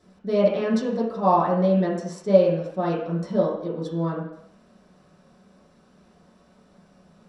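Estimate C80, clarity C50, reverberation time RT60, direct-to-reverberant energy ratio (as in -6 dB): 6.5 dB, 4.0 dB, 0.70 s, -8.5 dB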